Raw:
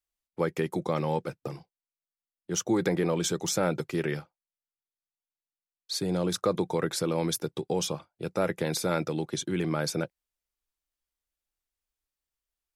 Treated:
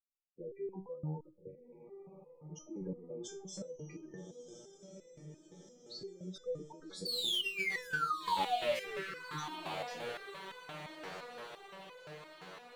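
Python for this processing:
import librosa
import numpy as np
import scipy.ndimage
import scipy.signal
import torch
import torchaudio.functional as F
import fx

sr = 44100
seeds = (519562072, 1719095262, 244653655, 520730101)

p1 = fx.diode_clip(x, sr, knee_db=-28.5)
p2 = fx.spec_gate(p1, sr, threshold_db=-10, keep='strong')
p3 = fx.peak_eq(p2, sr, hz=9400.0, db=-4.5, octaves=0.34)
p4 = fx.spec_paint(p3, sr, seeds[0], shape='fall', start_s=7.05, length_s=1.95, low_hz=400.0, high_hz=4600.0, level_db=-21.0)
p5 = 10.0 ** (-18.5 / 20.0) * (np.abs((p4 / 10.0 ** (-18.5 / 20.0) + 3.0) % 4.0 - 2.0) - 1.0)
p6 = p5 + fx.echo_diffused(p5, sr, ms=1254, feedback_pct=59, wet_db=-9.0, dry=0)
p7 = fx.resonator_held(p6, sr, hz=5.8, low_hz=94.0, high_hz=500.0)
y = p7 * librosa.db_to_amplitude(-1.5)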